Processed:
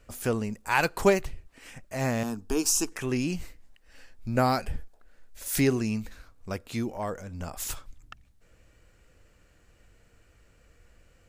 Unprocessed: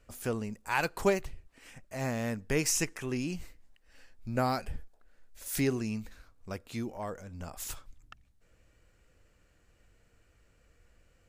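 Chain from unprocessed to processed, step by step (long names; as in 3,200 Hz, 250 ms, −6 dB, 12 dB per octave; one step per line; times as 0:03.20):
0:02.23–0:02.92: phaser with its sweep stopped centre 540 Hz, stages 6
level +5.5 dB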